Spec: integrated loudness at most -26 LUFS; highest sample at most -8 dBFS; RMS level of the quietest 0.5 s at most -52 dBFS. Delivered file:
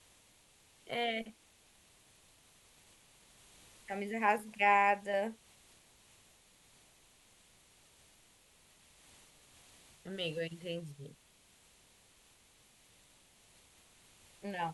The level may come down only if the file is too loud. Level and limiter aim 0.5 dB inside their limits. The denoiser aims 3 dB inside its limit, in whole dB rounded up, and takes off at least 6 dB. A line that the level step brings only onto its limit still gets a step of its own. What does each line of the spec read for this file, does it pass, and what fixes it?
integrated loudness -34.5 LUFS: pass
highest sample -16.0 dBFS: pass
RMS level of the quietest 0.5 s -66 dBFS: pass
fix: none needed

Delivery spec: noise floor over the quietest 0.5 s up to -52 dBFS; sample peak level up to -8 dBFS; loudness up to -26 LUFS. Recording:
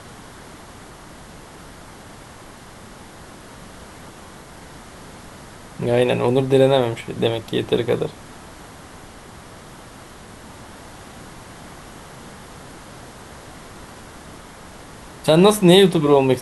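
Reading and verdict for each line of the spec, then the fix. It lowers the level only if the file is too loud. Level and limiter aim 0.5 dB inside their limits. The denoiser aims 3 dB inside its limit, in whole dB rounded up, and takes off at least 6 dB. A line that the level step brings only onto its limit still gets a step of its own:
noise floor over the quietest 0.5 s -41 dBFS: fail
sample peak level -2.0 dBFS: fail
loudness -17.0 LUFS: fail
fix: noise reduction 6 dB, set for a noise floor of -41 dBFS; trim -9.5 dB

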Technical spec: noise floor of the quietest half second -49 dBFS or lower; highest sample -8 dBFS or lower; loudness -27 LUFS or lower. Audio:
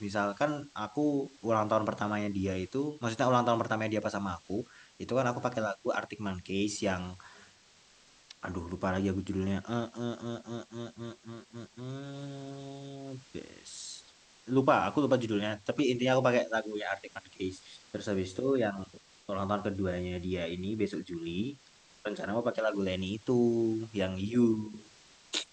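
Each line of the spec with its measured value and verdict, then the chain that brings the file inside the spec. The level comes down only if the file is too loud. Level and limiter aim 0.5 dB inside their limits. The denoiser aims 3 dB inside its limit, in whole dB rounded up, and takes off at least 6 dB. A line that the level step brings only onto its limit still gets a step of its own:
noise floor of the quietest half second -61 dBFS: pass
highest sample -10.0 dBFS: pass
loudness -32.5 LUFS: pass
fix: none needed

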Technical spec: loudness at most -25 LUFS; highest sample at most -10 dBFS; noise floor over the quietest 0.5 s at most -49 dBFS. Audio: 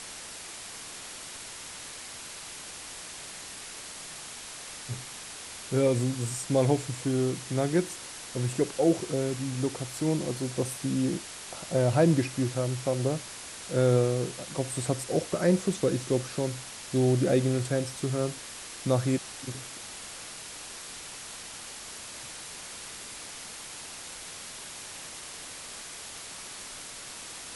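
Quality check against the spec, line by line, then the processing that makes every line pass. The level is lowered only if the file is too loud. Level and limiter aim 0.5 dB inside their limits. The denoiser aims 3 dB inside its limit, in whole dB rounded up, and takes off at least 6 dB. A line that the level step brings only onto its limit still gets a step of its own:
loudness -31.0 LUFS: pass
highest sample -11.0 dBFS: pass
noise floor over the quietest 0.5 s -42 dBFS: fail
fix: noise reduction 10 dB, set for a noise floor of -42 dBFS

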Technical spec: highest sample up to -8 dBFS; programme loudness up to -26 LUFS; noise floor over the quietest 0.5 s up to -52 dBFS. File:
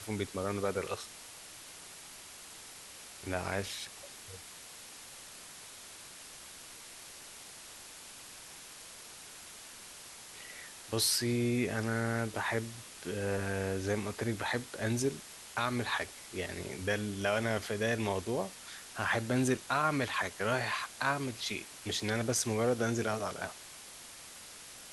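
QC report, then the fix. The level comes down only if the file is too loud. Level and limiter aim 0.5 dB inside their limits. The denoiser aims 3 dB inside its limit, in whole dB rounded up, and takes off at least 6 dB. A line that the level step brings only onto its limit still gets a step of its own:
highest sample -16.5 dBFS: pass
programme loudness -34.0 LUFS: pass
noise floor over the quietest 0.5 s -50 dBFS: fail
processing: noise reduction 6 dB, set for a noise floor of -50 dBFS

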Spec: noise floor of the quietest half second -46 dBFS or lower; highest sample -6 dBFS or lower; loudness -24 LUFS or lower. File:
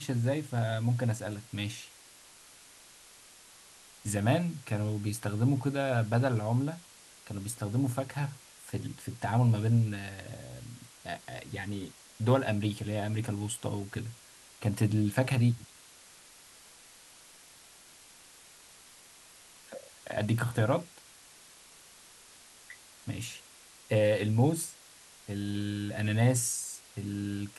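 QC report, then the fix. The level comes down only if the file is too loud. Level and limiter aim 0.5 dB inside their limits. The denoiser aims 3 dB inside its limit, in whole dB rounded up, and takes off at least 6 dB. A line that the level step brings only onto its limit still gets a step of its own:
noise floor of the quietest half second -55 dBFS: pass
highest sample -13.0 dBFS: pass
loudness -31.5 LUFS: pass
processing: none needed

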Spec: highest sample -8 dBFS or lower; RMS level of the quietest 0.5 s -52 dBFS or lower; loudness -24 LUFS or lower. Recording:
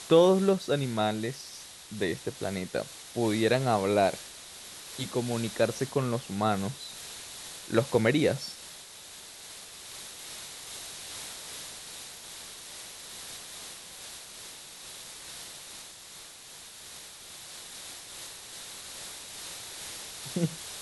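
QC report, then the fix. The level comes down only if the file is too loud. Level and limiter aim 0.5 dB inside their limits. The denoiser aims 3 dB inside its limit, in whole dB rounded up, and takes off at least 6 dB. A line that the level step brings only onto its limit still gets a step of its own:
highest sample -9.5 dBFS: pass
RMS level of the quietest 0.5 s -48 dBFS: fail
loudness -32.0 LUFS: pass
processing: noise reduction 7 dB, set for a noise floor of -48 dBFS

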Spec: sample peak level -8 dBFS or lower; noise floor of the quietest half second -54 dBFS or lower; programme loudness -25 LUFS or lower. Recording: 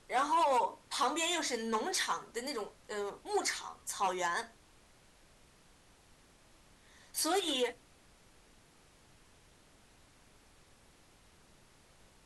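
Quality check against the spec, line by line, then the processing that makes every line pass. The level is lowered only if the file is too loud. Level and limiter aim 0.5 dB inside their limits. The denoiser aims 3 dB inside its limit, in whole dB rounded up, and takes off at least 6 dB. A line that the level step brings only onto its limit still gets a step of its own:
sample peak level -20.5 dBFS: pass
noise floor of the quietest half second -63 dBFS: pass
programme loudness -34.0 LUFS: pass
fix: none needed

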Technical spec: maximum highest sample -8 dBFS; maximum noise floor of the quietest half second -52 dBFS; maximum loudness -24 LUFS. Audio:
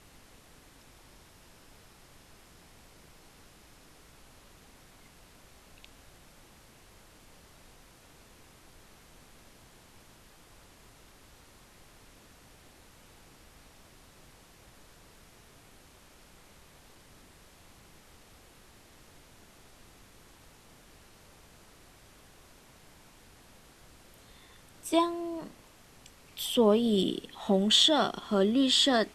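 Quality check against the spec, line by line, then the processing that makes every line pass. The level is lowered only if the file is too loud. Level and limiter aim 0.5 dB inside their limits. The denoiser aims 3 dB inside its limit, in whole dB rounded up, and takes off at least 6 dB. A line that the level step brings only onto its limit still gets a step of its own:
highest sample -9.5 dBFS: pass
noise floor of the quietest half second -57 dBFS: pass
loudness -26.0 LUFS: pass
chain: none needed

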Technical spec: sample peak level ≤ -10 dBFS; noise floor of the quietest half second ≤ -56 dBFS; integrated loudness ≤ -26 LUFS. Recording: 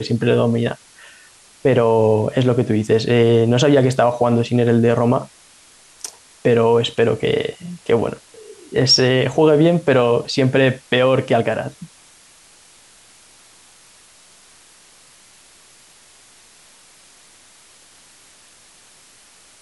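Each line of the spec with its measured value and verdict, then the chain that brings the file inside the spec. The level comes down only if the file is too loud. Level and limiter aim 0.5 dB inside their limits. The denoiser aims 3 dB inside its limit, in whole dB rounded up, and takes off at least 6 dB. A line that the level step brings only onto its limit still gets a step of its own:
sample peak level -4.5 dBFS: fail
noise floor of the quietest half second -49 dBFS: fail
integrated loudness -16.5 LUFS: fail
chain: trim -10 dB

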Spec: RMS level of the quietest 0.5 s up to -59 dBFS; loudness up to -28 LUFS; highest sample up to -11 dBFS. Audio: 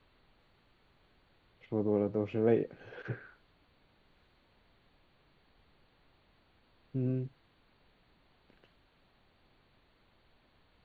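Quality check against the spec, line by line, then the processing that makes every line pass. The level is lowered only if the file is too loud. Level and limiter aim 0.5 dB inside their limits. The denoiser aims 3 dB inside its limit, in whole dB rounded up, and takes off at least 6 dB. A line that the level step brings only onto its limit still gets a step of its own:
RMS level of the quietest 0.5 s -68 dBFS: pass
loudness -34.0 LUFS: pass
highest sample -15.0 dBFS: pass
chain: none needed

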